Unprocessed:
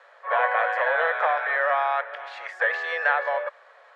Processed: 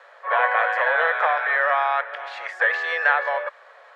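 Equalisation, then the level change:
dynamic equaliser 590 Hz, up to −4 dB, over −37 dBFS, Q 1.4
+4.0 dB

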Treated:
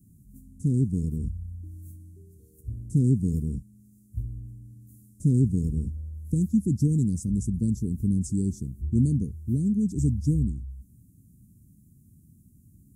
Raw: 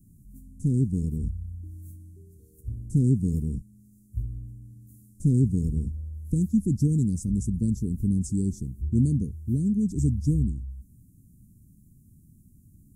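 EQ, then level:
high-pass filter 51 Hz
0.0 dB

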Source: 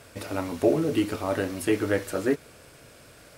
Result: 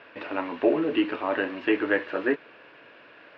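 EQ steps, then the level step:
high-frequency loss of the air 200 metres
loudspeaker in its box 300–4,100 Hz, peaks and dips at 310 Hz +4 dB, 990 Hz +7 dB, 1,700 Hz +9 dB, 2,700 Hz +9 dB
0.0 dB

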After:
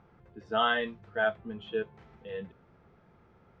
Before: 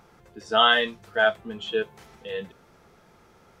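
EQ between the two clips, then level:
low-pass filter 2,500 Hz 12 dB per octave
parametric band 98 Hz +7.5 dB 2.8 octaves
−7.5 dB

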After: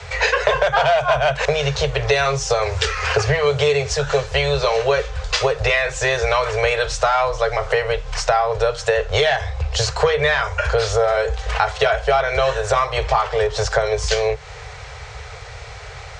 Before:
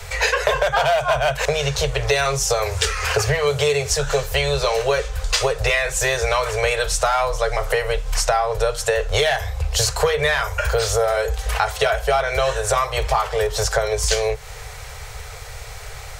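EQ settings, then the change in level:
high-pass filter 52 Hz
Bessel low-pass filter 4,600 Hz, order 8
+2.0 dB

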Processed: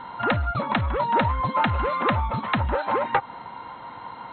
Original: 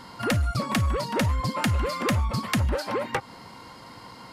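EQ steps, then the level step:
linear-phase brick-wall low-pass 4,200 Hz
parametric band 1,000 Hz +14.5 dB 1.2 octaves
notch filter 1,100 Hz, Q 6.9
−2.0 dB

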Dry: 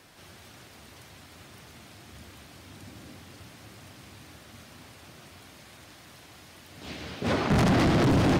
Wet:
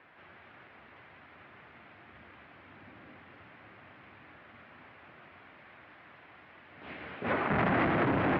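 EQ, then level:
low-pass filter 2,200 Hz 24 dB per octave
high-frequency loss of the air 160 metres
spectral tilt +3.5 dB per octave
0.0 dB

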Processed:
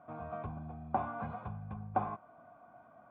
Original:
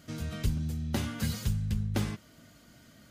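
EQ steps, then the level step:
formant resonators in series a
high-pass filter 91 Hz
parametric band 1,500 Hz +13 dB 0.23 octaves
+17.0 dB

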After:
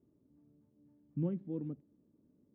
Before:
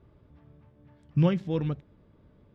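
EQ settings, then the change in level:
resonant band-pass 270 Hz, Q 2.7
−3.5 dB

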